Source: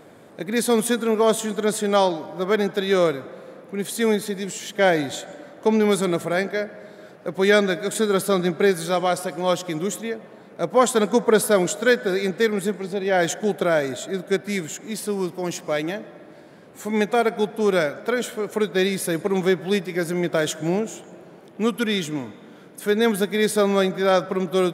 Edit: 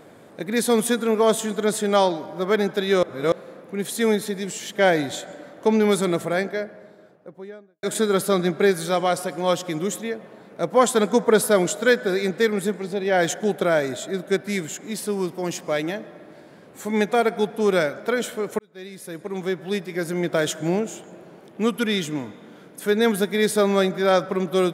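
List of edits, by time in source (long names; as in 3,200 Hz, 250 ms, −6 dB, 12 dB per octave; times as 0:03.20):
0:03.03–0:03.32: reverse
0:06.13–0:07.83: fade out and dull
0:18.59–0:20.41: fade in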